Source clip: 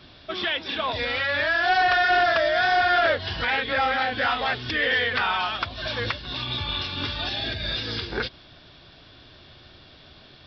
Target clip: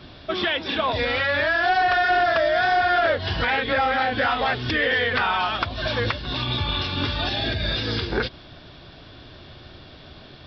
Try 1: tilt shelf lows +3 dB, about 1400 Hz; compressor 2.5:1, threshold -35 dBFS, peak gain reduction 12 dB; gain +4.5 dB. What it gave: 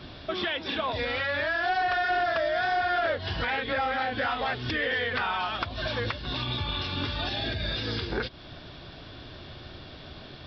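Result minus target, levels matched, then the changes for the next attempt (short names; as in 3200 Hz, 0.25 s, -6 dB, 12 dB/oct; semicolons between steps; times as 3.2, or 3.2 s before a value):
compressor: peak gain reduction +6.5 dB
change: compressor 2.5:1, threshold -24 dBFS, peak gain reduction 5.5 dB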